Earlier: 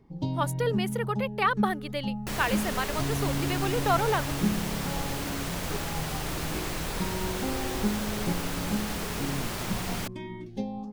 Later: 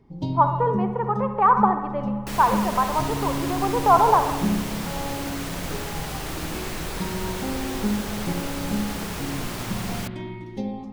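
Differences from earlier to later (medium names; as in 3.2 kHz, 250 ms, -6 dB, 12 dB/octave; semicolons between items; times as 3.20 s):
speech: add resonant low-pass 980 Hz, resonance Q 5.2; reverb: on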